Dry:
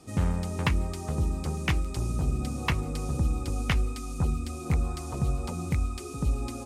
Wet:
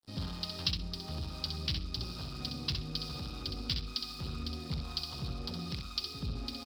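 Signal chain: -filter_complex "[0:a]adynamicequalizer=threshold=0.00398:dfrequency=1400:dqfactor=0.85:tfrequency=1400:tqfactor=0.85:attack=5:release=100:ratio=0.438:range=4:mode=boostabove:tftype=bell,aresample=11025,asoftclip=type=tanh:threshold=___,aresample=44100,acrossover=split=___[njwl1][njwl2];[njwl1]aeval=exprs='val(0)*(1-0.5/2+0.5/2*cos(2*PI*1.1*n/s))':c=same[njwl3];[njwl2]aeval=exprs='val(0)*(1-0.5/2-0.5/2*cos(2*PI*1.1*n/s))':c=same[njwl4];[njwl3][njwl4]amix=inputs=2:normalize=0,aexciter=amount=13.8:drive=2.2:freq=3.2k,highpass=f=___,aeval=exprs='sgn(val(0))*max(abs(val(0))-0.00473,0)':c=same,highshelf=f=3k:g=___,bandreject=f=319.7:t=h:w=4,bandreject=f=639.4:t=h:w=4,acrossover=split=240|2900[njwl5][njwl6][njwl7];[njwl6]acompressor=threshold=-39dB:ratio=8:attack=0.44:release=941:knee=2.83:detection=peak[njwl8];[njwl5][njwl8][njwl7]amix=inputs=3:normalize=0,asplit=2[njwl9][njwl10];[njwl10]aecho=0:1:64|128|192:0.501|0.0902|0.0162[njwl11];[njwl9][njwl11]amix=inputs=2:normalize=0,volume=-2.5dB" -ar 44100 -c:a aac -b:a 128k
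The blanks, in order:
-24.5dB, 530, 64, -2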